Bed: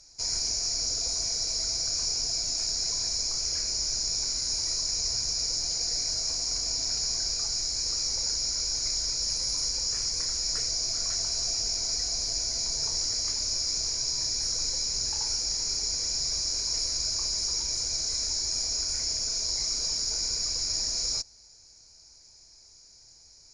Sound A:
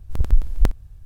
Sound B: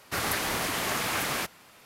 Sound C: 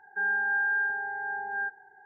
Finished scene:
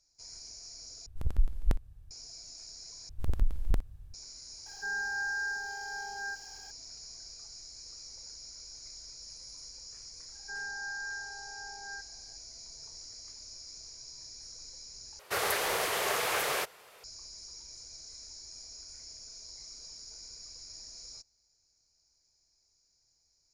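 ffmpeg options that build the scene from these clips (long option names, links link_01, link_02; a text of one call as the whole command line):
ffmpeg -i bed.wav -i cue0.wav -i cue1.wav -i cue2.wav -filter_complex "[1:a]asplit=2[link_01][link_02];[3:a]asplit=2[link_03][link_04];[0:a]volume=-18.5dB[link_05];[link_01]aresample=32000,aresample=44100[link_06];[link_02]acompressor=threshold=-12dB:ratio=6:attack=3.2:release=140:knee=1:detection=peak[link_07];[link_03]aeval=exprs='val(0)+0.5*0.00447*sgn(val(0))':channel_layout=same[link_08];[2:a]lowshelf=frequency=340:width_type=q:width=3:gain=-8[link_09];[link_05]asplit=4[link_10][link_11][link_12][link_13];[link_10]atrim=end=1.064[link_14];[link_06]atrim=end=1.05,asetpts=PTS-STARTPTS,volume=-10.5dB[link_15];[link_11]atrim=start=2.106:end=3.094[link_16];[link_07]atrim=end=1.05,asetpts=PTS-STARTPTS,volume=-7dB[link_17];[link_12]atrim=start=4.136:end=15.194[link_18];[link_09]atrim=end=1.85,asetpts=PTS-STARTPTS,volume=-2dB[link_19];[link_13]atrim=start=17.036[link_20];[link_08]atrim=end=2.05,asetpts=PTS-STARTPTS,volume=-7.5dB,afade=type=in:duration=0.004:curve=hsin,afade=type=out:start_time=2.046:duration=0.004:curve=hsin,adelay=4660[link_21];[link_04]atrim=end=2.05,asetpts=PTS-STARTPTS,volume=-12.5dB,afade=type=in:duration=0.004:curve=hsin,afade=type=out:start_time=2.046:duration=0.004:curve=hsin,adelay=10320[link_22];[link_14][link_15]acrossfade=duration=0.004:curve1=hsin:curve2=hsin[link_23];[link_23][link_16]acrossfade=duration=0.004:curve1=hsin:curve2=hsin[link_24];[link_24][link_17]acrossfade=duration=0.004:curve1=hsin:curve2=hsin[link_25];[link_25][link_18]acrossfade=duration=0.004:curve1=hsin:curve2=hsin[link_26];[link_26][link_19]acrossfade=duration=0.004:curve1=hsin:curve2=hsin[link_27];[link_27][link_20]acrossfade=duration=0.004:curve1=hsin:curve2=hsin[link_28];[link_28][link_21][link_22]amix=inputs=3:normalize=0" out.wav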